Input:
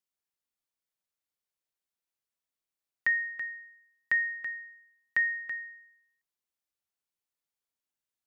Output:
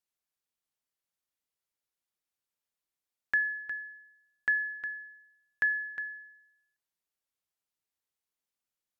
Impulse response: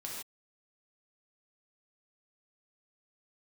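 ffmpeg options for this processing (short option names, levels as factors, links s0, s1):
-filter_complex "[0:a]asplit=2[s0][s1];[1:a]atrim=start_sample=2205,afade=t=out:st=0.16:d=0.01,atrim=end_sample=7497[s2];[s1][s2]afir=irnorm=-1:irlink=0,volume=0.211[s3];[s0][s3]amix=inputs=2:normalize=0,asetrate=40517,aresample=44100,volume=0.841"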